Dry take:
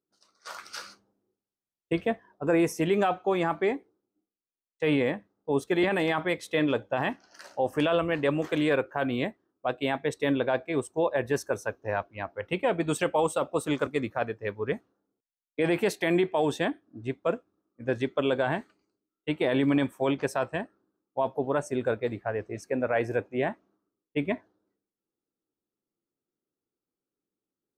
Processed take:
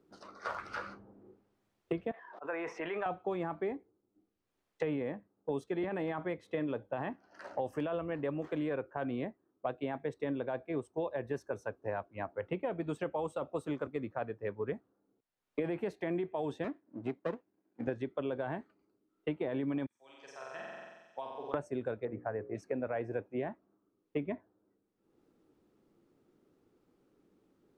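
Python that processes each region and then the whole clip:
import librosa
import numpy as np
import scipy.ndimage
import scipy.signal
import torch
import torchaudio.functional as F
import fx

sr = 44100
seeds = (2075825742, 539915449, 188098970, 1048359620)

y = fx.chain(x, sr, fx.highpass(hz=1100.0, slope=12),
    fx.air_absorb(metres=170.0),
    fx.sustainer(db_per_s=20.0), at=(2.11, 3.06))
y = fx.chain(y, sr, fx.lower_of_two(delay_ms=0.42),
    fx.highpass(hz=190.0, slope=12), at=(16.64, 17.87))
y = fx.chain(y, sr, fx.bandpass_q(hz=5800.0, q=3.5),
    fx.room_flutter(wall_m=7.8, rt60_s=1.1), at=(19.86, 21.54))
y = fx.chain(y, sr, fx.lowpass(hz=2000.0, slope=24),
    fx.hum_notches(base_hz=60, count=9), at=(22.05, 22.55))
y = fx.lowpass(y, sr, hz=1100.0, slope=6)
y = fx.band_squash(y, sr, depth_pct=100)
y = F.gain(torch.from_numpy(y), -8.5).numpy()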